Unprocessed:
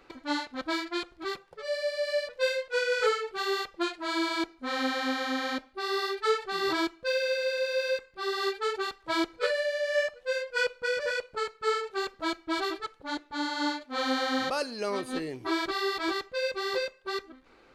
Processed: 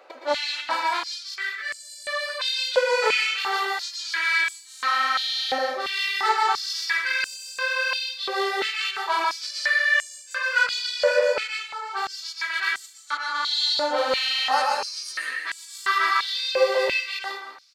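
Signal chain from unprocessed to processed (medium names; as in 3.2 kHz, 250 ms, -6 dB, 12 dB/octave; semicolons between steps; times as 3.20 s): single-diode clipper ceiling -27.5 dBFS; 11.44–11.88 s: slow attack 460 ms; on a send: delay 197 ms -14 dB; on the sum: plate-style reverb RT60 0.76 s, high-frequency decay 0.8×, pre-delay 105 ms, DRR -1.5 dB; step-sequenced high-pass 2.9 Hz 600–7600 Hz; trim +3.5 dB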